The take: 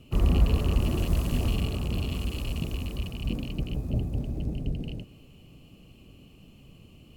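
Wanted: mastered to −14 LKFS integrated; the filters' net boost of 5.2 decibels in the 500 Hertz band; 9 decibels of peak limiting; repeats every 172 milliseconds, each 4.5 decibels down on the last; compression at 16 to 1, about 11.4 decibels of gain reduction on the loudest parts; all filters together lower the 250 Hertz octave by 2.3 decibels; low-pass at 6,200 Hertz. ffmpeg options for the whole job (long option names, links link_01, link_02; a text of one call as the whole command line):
ffmpeg -i in.wav -af "lowpass=6200,equalizer=frequency=250:width_type=o:gain=-5.5,equalizer=frequency=500:width_type=o:gain=8.5,acompressor=threshold=-27dB:ratio=16,alimiter=level_in=4.5dB:limit=-24dB:level=0:latency=1,volume=-4.5dB,aecho=1:1:172|344|516|688|860|1032|1204|1376|1548:0.596|0.357|0.214|0.129|0.0772|0.0463|0.0278|0.0167|0.01,volume=22.5dB" out.wav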